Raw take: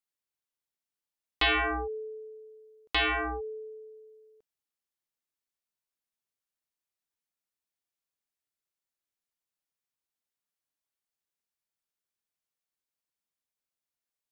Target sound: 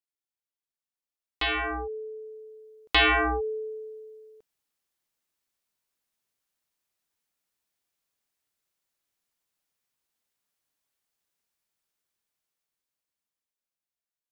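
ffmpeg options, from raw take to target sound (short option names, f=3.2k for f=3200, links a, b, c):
-af "dynaudnorm=f=520:g=9:m=14dB,volume=-6dB"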